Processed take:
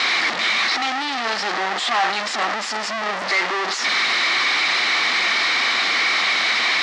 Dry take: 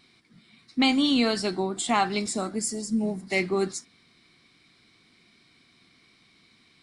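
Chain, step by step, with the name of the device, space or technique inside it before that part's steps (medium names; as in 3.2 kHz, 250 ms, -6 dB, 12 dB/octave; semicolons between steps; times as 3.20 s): 0.80–2.83 s: resonant low shelf 160 Hz -6.5 dB, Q 3; home computer beeper (one-bit comparator; cabinet simulation 630–5200 Hz, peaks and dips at 790 Hz +4 dB, 1.2 kHz +5 dB, 1.9 kHz +7 dB); trim +8 dB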